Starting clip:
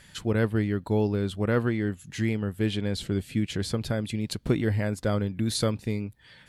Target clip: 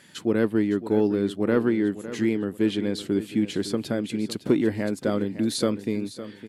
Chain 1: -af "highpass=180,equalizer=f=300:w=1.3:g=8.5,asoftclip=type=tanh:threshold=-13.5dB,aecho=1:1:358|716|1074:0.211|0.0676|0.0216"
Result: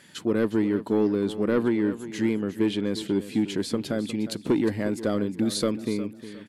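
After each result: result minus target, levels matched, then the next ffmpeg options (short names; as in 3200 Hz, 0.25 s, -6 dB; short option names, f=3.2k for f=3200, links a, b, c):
soft clip: distortion +12 dB; echo 0.201 s early
-af "highpass=180,equalizer=f=300:w=1.3:g=8.5,asoftclip=type=tanh:threshold=-6dB,aecho=1:1:358|716|1074:0.211|0.0676|0.0216"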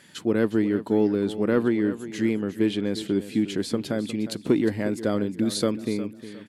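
echo 0.201 s early
-af "highpass=180,equalizer=f=300:w=1.3:g=8.5,asoftclip=type=tanh:threshold=-6dB,aecho=1:1:559|1118|1677:0.211|0.0676|0.0216"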